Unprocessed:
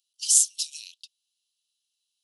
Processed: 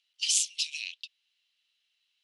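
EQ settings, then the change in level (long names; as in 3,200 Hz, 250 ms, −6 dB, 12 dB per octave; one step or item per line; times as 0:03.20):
low-pass with resonance 2,100 Hz, resonance Q 3.5
spectral tilt +3.5 dB per octave
+5.0 dB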